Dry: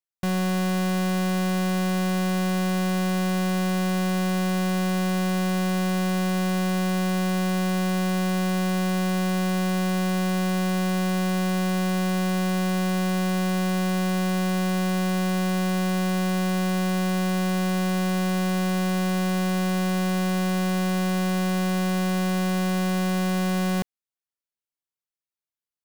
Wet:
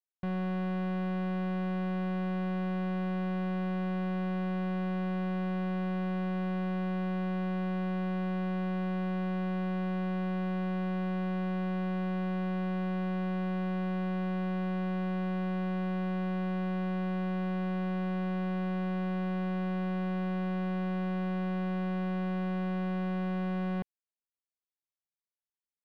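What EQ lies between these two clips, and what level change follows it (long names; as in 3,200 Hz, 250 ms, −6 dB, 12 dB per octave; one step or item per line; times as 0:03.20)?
high-frequency loss of the air 470 metres
−7.5 dB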